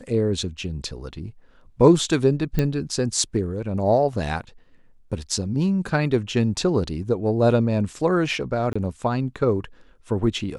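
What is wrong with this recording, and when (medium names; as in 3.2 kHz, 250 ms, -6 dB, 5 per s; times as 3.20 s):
2.59 s: pop -10 dBFS
8.73–8.76 s: dropout 25 ms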